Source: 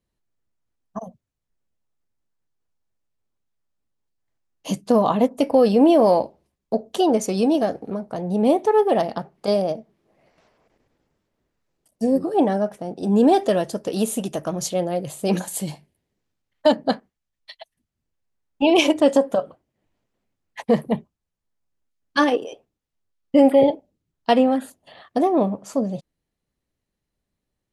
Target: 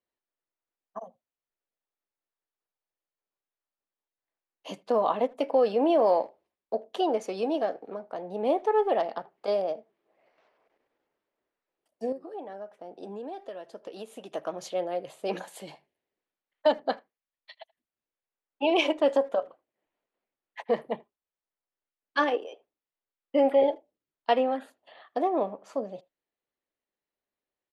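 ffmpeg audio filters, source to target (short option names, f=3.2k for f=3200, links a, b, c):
-filter_complex "[0:a]acrossover=split=330 4000:gain=0.0891 1 0.158[a][b][c];[a][b][c]amix=inputs=3:normalize=0,asplit=2[d][e];[e]adelay=80,highpass=300,lowpass=3.4k,asoftclip=type=hard:threshold=-15dB,volume=-25dB[f];[d][f]amix=inputs=2:normalize=0,asettb=1/sr,asplit=3[g][h][i];[g]atrim=end=12.124[j];[h]atrim=start=12.12:end=14.34,asetpts=PTS-STARTPTS,afade=t=in:d=0.004:c=qsin,afade=t=out:st=2.216:d=0.004:c=qsin,acompressor=threshold=-33dB:ratio=5[k];[i]atrim=start=14.336[l];[j][k]acrossfade=d=0.004:c1=hsin:c2=qsin[m];[m][l]acrossfade=d=0.004:c1=qsin:c2=hsin,volume=-5dB"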